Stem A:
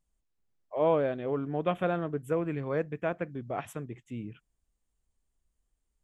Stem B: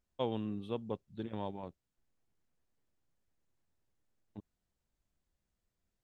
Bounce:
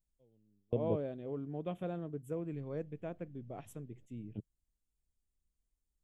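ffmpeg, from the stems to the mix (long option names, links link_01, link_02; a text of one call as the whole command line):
ffmpeg -i stem1.wav -i stem2.wav -filter_complex "[0:a]volume=-6dB,asplit=2[link_01][link_02];[1:a]lowpass=frequency=2800:width=0.5412,lowpass=frequency=2800:width=1.3066,acompressor=mode=upward:threshold=-53dB:ratio=2.5,equalizer=frequency=125:width_type=o:width=1:gain=7,equalizer=frequency=500:width_type=o:width=1:gain=7,equalizer=frequency=1000:width_type=o:width=1:gain=-10,volume=2.5dB,asplit=3[link_03][link_04][link_05];[link_03]atrim=end=1.08,asetpts=PTS-STARTPTS,afade=type=out:start_time=1.076:duration=0.004:curve=hsin[link_06];[link_04]atrim=start=1.08:end=2.53,asetpts=PTS-STARTPTS,volume=0[link_07];[link_05]atrim=start=2.53,asetpts=PTS-STARTPTS,afade=type=in:duration=0.004:curve=hsin[link_08];[link_06][link_07][link_08]concat=n=3:v=0:a=1[link_09];[link_02]apad=whole_len=266063[link_10];[link_09][link_10]sidechaingate=range=-38dB:threshold=-59dB:ratio=16:detection=peak[link_11];[link_01][link_11]amix=inputs=2:normalize=0,equalizer=frequency=1500:width=0.55:gain=-13.5" out.wav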